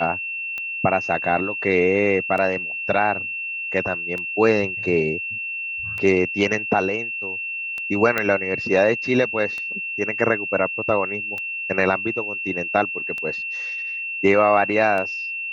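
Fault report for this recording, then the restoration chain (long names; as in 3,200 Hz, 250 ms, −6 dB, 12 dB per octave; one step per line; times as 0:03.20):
scratch tick 33 1/3 rpm −17 dBFS
whistle 2,700 Hz −26 dBFS
0:08.18: click −7 dBFS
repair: click removal
notch filter 2,700 Hz, Q 30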